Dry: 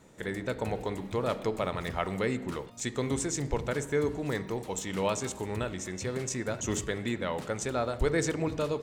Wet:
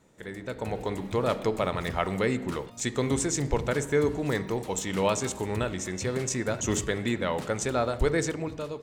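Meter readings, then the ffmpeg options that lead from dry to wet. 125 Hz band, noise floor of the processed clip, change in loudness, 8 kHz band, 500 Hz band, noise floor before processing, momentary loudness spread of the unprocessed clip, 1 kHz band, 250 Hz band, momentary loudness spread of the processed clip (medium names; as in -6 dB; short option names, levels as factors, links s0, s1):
+3.0 dB, -43 dBFS, +3.5 dB, +3.5 dB, +3.0 dB, -45 dBFS, 5 LU, +3.5 dB, +3.0 dB, 6 LU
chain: -af "dynaudnorm=f=130:g=11:m=2.82,volume=0.562"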